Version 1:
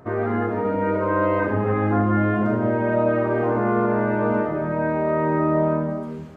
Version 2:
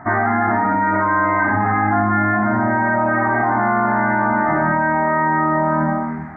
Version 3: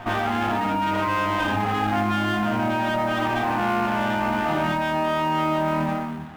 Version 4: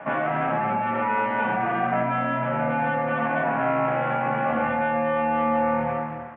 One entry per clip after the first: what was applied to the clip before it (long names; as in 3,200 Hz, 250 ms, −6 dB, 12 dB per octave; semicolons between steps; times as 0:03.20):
drawn EQ curve 150 Hz 0 dB, 290 Hz +4 dB, 490 Hz −17 dB, 760 Hz +14 dB, 1,100 Hz +7 dB, 2,000 Hz +14 dB, 2,900 Hz −21 dB; in parallel at +2 dB: compressor whose output falls as the input rises −22 dBFS, ratio −1; on the sum: level −4.5 dB
echo ahead of the sound 91 ms −17 dB; noise that follows the level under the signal 30 dB; windowed peak hold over 9 samples; level −5.5 dB
far-end echo of a speakerphone 240 ms, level −8 dB; single-sideband voice off tune −81 Hz 260–2,500 Hz